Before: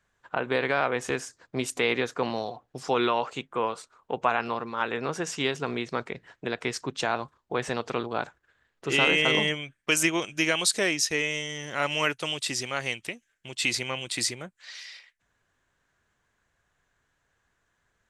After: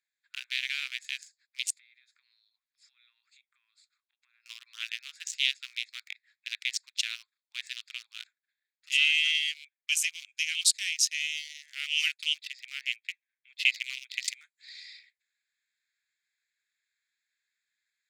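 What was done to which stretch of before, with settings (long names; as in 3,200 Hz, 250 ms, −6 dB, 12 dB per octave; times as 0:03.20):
0:01.76–0:04.46: downward compressor, threshold −47 dBFS
0:12.33–0:14.28: low-pass filter 2,700 Hz
whole clip: adaptive Wiener filter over 15 samples; speech leveller 2 s; Butterworth high-pass 2,400 Hz 36 dB per octave; level +3 dB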